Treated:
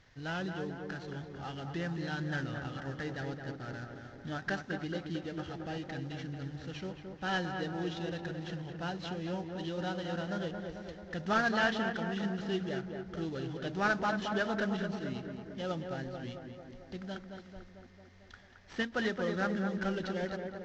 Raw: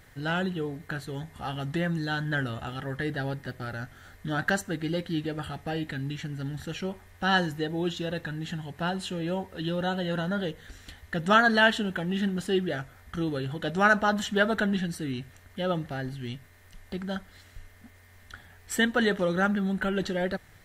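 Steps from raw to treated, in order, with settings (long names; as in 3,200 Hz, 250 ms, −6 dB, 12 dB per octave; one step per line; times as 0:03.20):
variable-slope delta modulation 32 kbit/s
tape delay 222 ms, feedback 74%, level −4 dB, low-pass 1,500 Hz
every ending faded ahead of time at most 230 dB per second
level −8 dB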